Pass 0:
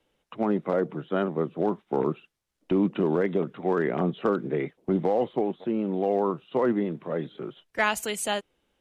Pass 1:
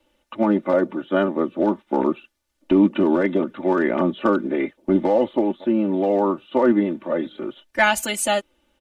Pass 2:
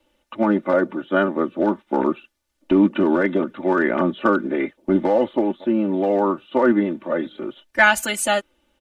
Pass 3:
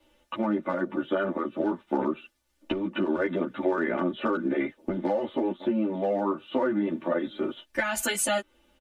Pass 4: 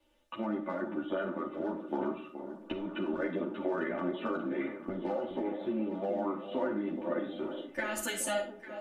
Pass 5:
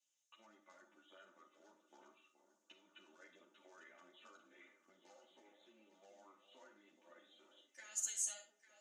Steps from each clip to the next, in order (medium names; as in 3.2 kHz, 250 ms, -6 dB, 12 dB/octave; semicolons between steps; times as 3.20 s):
comb 3.4 ms, depth 98%; trim +4 dB
dynamic bell 1.5 kHz, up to +6 dB, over -39 dBFS, Q 2.2
peak limiter -11 dBFS, peak gain reduction 9 dB; compression, threshold -25 dBFS, peak gain reduction 10 dB; endless flanger 10.6 ms +1.9 Hz; trim +4.5 dB
echo whose repeats swap between lows and highs 424 ms, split 900 Hz, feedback 66%, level -9.5 dB; algorithmic reverb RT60 0.51 s, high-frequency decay 0.5×, pre-delay 5 ms, DRR 6.5 dB; trim -8 dB
band-pass filter 6.6 kHz, Q 6.7; trim +7 dB